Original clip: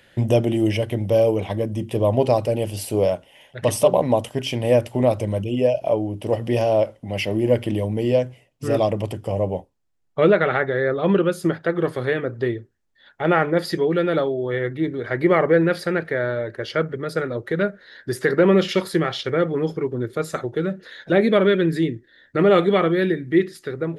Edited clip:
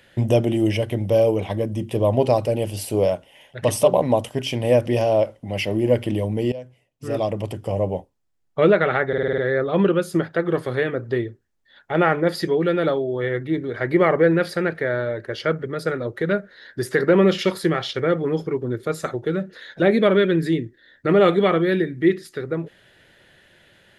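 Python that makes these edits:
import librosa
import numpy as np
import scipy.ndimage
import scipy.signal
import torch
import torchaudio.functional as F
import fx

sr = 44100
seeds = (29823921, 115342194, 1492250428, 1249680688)

y = fx.edit(x, sr, fx.cut(start_s=4.86, length_s=1.6),
    fx.fade_in_from(start_s=8.12, length_s=1.15, floor_db=-18.0),
    fx.stutter(start_s=10.68, slice_s=0.05, count=7), tone=tone)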